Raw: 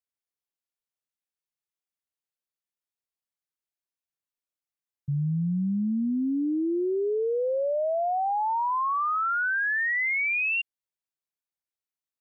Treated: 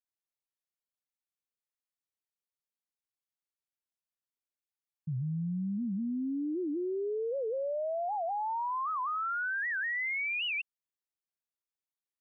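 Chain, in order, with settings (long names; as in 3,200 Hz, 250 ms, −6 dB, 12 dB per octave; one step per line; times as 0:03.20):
wow of a warped record 78 rpm, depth 250 cents
level −7 dB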